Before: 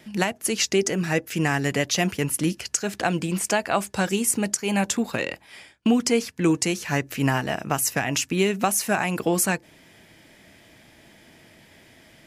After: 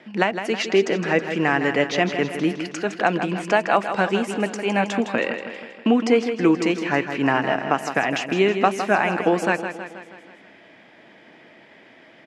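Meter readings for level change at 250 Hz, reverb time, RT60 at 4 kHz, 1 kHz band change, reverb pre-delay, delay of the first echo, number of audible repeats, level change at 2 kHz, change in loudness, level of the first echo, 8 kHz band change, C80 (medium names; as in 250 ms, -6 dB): +2.0 dB, no reverb, no reverb, +5.5 dB, no reverb, 160 ms, 6, +4.5 dB, +2.0 dB, -9.0 dB, -14.0 dB, no reverb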